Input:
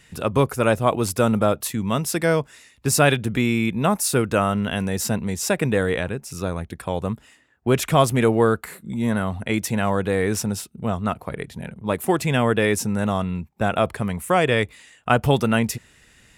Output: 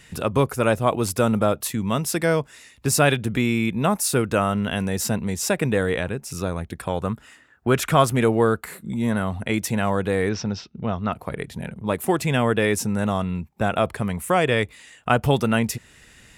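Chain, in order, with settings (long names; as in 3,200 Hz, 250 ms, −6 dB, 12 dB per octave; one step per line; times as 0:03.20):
0:06.89–0:08.14: parametric band 1,400 Hz +7.5 dB 0.58 octaves
in parallel at −1 dB: downward compressor, threshold −34 dBFS, peak gain reduction 22 dB
0:10.29–0:11.13: on the sum: elliptic low-pass filter 5,600 Hz, stop band 50 dB
level −2 dB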